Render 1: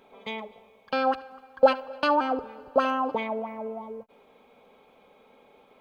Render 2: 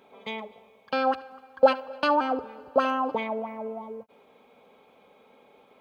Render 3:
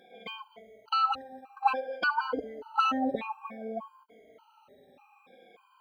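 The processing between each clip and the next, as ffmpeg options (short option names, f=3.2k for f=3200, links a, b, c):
-af "highpass=71"
-af "afftfilt=real='re*pow(10,22/40*sin(2*PI*(1.8*log(max(b,1)*sr/1024/100)/log(2)-(-0.56)*(pts-256)/sr)))':imag='im*pow(10,22/40*sin(2*PI*(1.8*log(max(b,1)*sr/1024/100)/log(2)-(-0.56)*(pts-256)/sr)))':win_size=1024:overlap=0.75,afftfilt=real='re*gt(sin(2*PI*1.7*pts/sr)*(1-2*mod(floor(b*sr/1024/790),2)),0)':imag='im*gt(sin(2*PI*1.7*pts/sr)*(1-2*mod(floor(b*sr/1024/790),2)),0)':win_size=1024:overlap=0.75,volume=-3dB"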